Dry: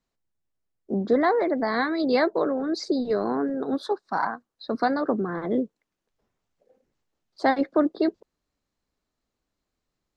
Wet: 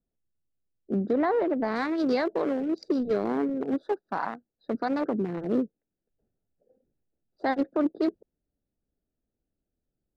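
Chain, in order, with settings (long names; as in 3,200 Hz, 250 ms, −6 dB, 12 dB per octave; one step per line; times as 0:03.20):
adaptive Wiener filter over 41 samples
0:01.13–0:01.76: high-shelf EQ 2,700 Hz −10.5 dB
brickwall limiter −17 dBFS, peak gain reduction 7 dB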